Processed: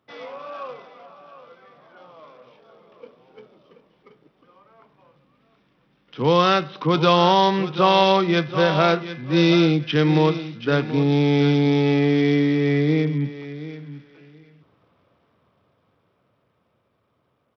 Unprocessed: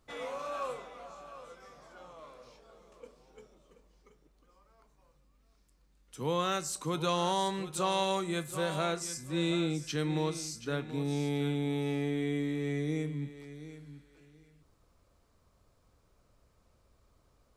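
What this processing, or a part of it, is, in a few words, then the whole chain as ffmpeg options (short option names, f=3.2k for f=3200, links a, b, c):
Bluetooth headset: -af "highpass=f=110:w=0.5412,highpass=f=110:w=1.3066,dynaudnorm=f=580:g=13:m=12dB,aresample=8000,aresample=44100,volume=2.5dB" -ar 44100 -c:a sbc -b:a 64k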